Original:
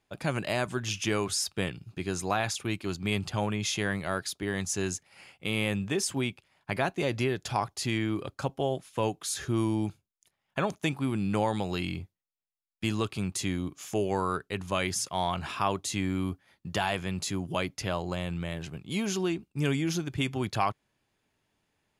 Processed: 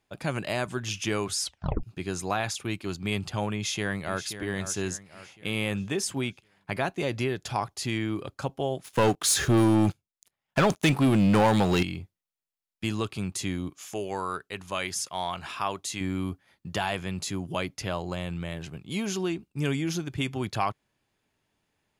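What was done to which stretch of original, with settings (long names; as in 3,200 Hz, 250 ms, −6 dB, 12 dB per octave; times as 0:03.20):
0:01.41: tape stop 0.42 s
0:03.54–0:04.23: delay throw 530 ms, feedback 45%, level −11 dB
0:08.84–0:11.83: leveller curve on the samples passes 3
0:13.70–0:16.01: low-shelf EQ 430 Hz −8 dB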